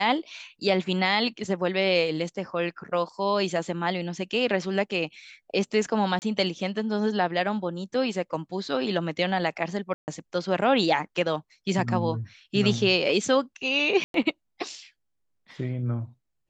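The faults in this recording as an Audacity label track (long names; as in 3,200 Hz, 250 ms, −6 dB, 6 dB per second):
6.190000	6.220000	drop-out 29 ms
9.940000	10.080000	drop-out 139 ms
14.040000	14.140000	drop-out 102 ms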